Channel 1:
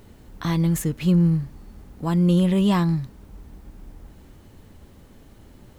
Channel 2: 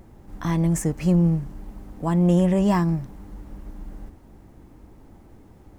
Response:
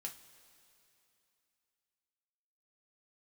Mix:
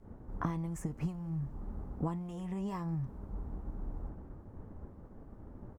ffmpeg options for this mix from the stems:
-filter_complex "[0:a]agate=range=-33dB:threshold=-42dB:ratio=3:detection=peak,lowpass=f=1.3k:w=0.5412,lowpass=f=1.3k:w=1.3066,acompressor=threshold=-34dB:ratio=2,volume=2.5dB[a];[1:a]flanger=delay=2.1:depth=5.5:regen=-78:speed=0.61:shape=triangular,volume=-1,adelay=0.6,volume=-15dB,asplit=2[b][c];[c]apad=whole_len=254940[d];[a][d]sidechaincompress=threshold=-44dB:ratio=3:attack=8.8:release=137[e];[e][b]amix=inputs=2:normalize=0"

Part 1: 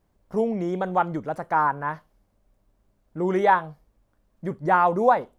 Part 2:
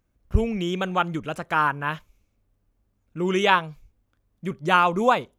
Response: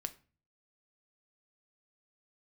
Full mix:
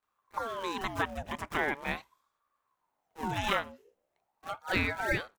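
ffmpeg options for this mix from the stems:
-filter_complex "[0:a]acompressor=threshold=-28dB:ratio=2,acrusher=samples=41:mix=1:aa=0.000001:lfo=1:lforange=65.6:lforate=1.9,volume=-12.5dB[a];[1:a]acompressor=threshold=-21dB:ratio=3,volume=-1,adelay=28,volume=-3.5dB,asplit=2[b][c];[c]volume=-15dB[d];[2:a]atrim=start_sample=2205[e];[d][e]afir=irnorm=-1:irlink=0[f];[a][b][f]amix=inputs=3:normalize=0,asuperstop=centerf=4000:order=4:qfactor=5.9,lowshelf=f=290:g=-7.5,aeval=exprs='val(0)*sin(2*PI*770*n/s+770*0.5/0.41*sin(2*PI*0.41*n/s))':c=same"

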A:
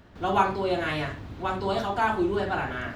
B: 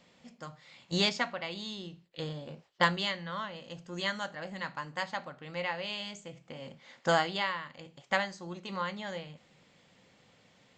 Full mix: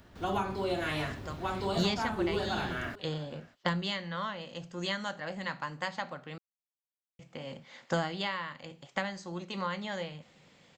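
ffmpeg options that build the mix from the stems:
-filter_complex "[0:a]highshelf=f=5k:g=9.5,volume=-4dB,asplit=2[a][b];[b]volume=-23.5dB[c];[1:a]adelay=850,volume=2.5dB,asplit=3[d][e][f];[d]atrim=end=6.38,asetpts=PTS-STARTPTS,afade=t=out:st=6.376:d=0.004:c=hsin[g];[e]atrim=start=6.38:end=7.19,asetpts=PTS-STARTPTS,volume=0[h];[f]atrim=start=7.19,asetpts=PTS-STARTPTS,afade=t=in:d=0.004:c=hsin[i];[g][h][i]concat=n=3:v=0:a=1[j];[c]aecho=0:1:597:1[k];[a][j][k]amix=inputs=3:normalize=0,acrossover=split=320[l][m];[m]acompressor=threshold=-30dB:ratio=6[n];[l][n]amix=inputs=2:normalize=0"

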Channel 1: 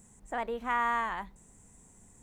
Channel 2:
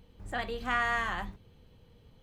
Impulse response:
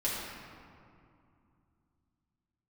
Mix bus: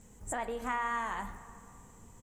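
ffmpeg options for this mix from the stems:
-filter_complex "[0:a]lowpass=f=7k:w=0.5412,lowpass=f=7k:w=1.3066,acompressor=threshold=-37dB:ratio=2,volume=0.5dB,asplit=3[a][b][c];[b]volume=-15dB[d];[1:a]acompressor=threshold=-35dB:ratio=2.5,highshelf=f=5.4k:t=q:w=3:g=12.5,adelay=13,volume=-2.5dB[e];[c]apad=whole_len=102943[f];[e][f]sidechaincompress=threshold=-44dB:ratio=8:attack=32:release=161[g];[2:a]atrim=start_sample=2205[h];[d][h]afir=irnorm=-1:irlink=0[i];[a][g][i]amix=inputs=3:normalize=0"

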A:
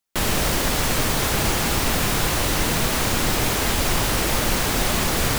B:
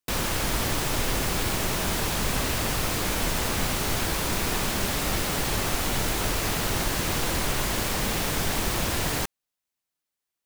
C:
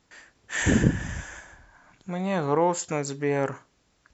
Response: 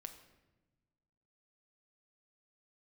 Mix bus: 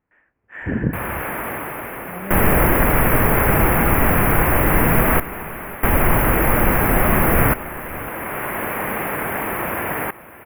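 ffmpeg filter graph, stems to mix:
-filter_complex "[0:a]adelay=2150,volume=0dB,asplit=3[a][b][c];[a]atrim=end=5.2,asetpts=PTS-STARTPTS,afade=t=out:st=5.196:d=0.004:c=hsin[d];[b]atrim=start=5.2:end=5.83,asetpts=PTS-STARTPTS,volume=0[e];[c]atrim=start=5.83,asetpts=PTS-STARTPTS,afade=t=in:d=0.004:c=hsin[f];[d][e][f]concat=n=3:v=0:a=1,asplit=3[g][h][i];[h]volume=-6dB[j];[i]volume=-18dB[k];[1:a]highpass=f=400:p=1,highshelf=f=11k:g=-6,adelay=850,volume=-6dB,asplit=2[l][m];[m]volume=-17.5dB[n];[2:a]volume=-10dB[o];[3:a]atrim=start_sample=2205[p];[j][p]afir=irnorm=-1:irlink=0[q];[k][n]amix=inputs=2:normalize=0,aecho=0:1:554:1[r];[g][l][o][q][r]amix=inputs=5:normalize=0,dynaudnorm=f=210:g=7:m=14dB,asuperstop=centerf=5400:order=8:qfactor=0.62"

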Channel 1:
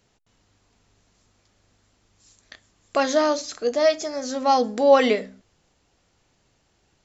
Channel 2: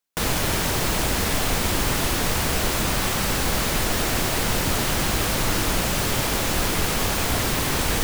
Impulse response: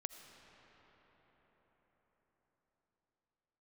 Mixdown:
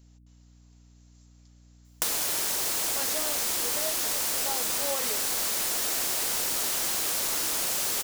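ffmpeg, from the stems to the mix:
-filter_complex "[0:a]volume=-7dB[a];[1:a]lowshelf=f=130:g=-9,adelay=1850,volume=0.5dB[b];[a][b]amix=inputs=2:normalize=0,bass=f=250:g=-11,treble=f=4k:g=11,aeval=exprs='val(0)+0.002*(sin(2*PI*60*n/s)+sin(2*PI*2*60*n/s)/2+sin(2*PI*3*60*n/s)/3+sin(2*PI*4*60*n/s)/4+sin(2*PI*5*60*n/s)/5)':c=same,acompressor=threshold=-26dB:ratio=6"

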